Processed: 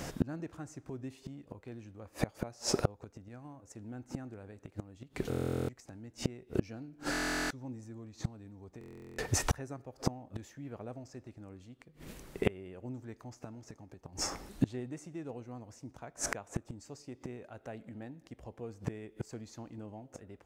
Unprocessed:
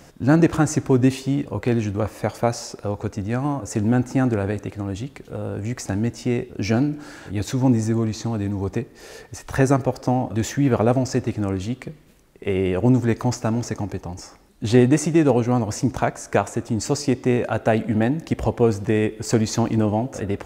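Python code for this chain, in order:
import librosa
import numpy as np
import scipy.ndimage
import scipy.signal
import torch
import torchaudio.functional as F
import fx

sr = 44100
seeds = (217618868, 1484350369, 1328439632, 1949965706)

y = fx.gate_flip(x, sr, shuts_db=-21.0, range_db=-32)
y = fx.buffer_glitch(y, sr, at_s=(5.29, 7.11, 8.79), block=1024, repeats=16)
y = y * 10.0 ** (6.0 / 20.0)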